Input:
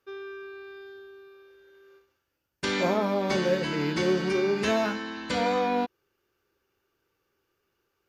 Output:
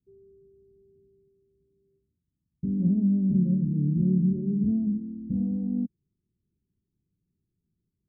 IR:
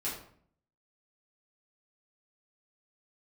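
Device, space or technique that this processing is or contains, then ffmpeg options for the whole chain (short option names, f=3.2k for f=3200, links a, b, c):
the neighbour's flat through the wall: -af "lowpass=f=220:w=0.5412,lowpass=f=220:w=1.3066,equalizer=f=180:t=o:w=0.88:g=8,volume=4dB"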